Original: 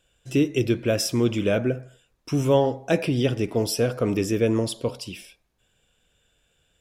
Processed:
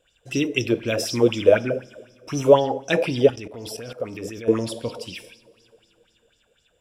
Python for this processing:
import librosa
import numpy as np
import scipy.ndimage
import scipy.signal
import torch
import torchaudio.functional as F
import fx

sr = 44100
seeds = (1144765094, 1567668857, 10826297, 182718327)

y = fx.rev_double_slope(x, sr, seeds[0], early_s=0.44, late_s=3.0, knee_db=-18, drr_db=11.0)
y = fx.level_steps(y, sr, step_db=16, at=(3.3, 4.48))
y = fx.bell_lfo(y, sr, hz=4.0, low_hz=440.0, high_hz=5800.0, db=17)
y = F.gain(torch.from_numpy(y), -3.5).numpy()